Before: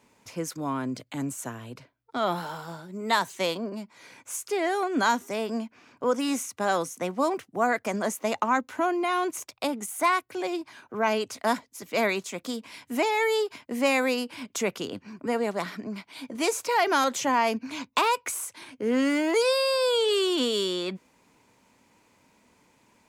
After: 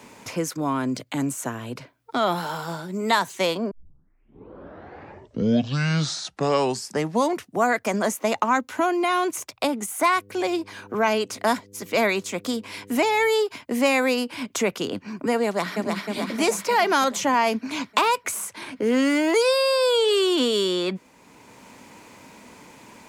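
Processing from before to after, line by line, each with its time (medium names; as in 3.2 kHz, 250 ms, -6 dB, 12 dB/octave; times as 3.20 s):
3.71 s: tape start 3.92 s
10.14–13.27 s: mains buzz 100 Hz, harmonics 5, -57 dBFS -1 dB/octave
15.45–16.07 s: echo throw 310 ms, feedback 65%, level -4 dB
whole clip: three bands compressed up and down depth 40%; trim +4 dB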